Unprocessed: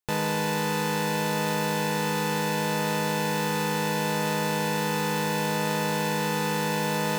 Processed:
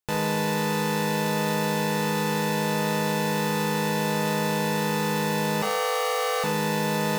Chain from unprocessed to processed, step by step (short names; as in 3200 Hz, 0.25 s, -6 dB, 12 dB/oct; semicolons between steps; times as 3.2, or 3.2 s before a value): 5.62–6.44 frequency shift +290 Hz; Schroeder reverb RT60 0.4 s, combs from 30 ms, DRR 8.5 dB